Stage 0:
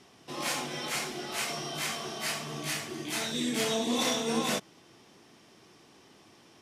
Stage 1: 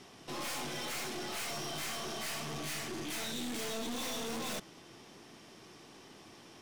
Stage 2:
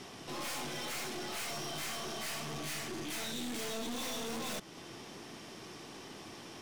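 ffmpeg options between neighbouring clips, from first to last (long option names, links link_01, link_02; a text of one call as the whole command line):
ffmpeg -i in.wav -af "aeval=exprs='(tanh(126*val(0)+0.45)-tanh(0.45))/126':channel_layout=same,volume=4.5dB" out.wav
ffmpeg -i in.wav -af "alimiter=level_in=17dB:limit=-24dB:level=0:latency=1:release=222,volume=-17dB,volume=6dB" out.wav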